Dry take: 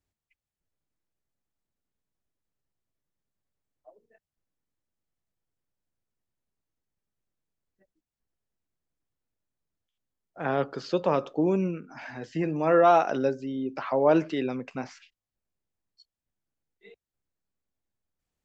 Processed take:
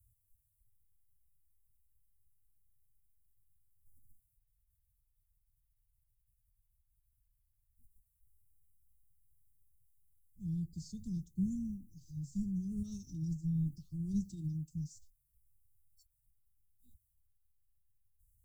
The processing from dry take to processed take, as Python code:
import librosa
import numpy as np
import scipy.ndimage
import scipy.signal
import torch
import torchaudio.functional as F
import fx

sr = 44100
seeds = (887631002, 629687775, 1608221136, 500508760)

y = fx.pitch_keep_formants(x, sr, semitones=3.5)
y = scipy.signal.sosfilt(scipy.signal.cheby2(4, 80, [500.0, 2400.0], 'bandstop', fs=sr, output='sos'), y)
y = F.gain(torch.from_numpy(y), 18.0).numpy()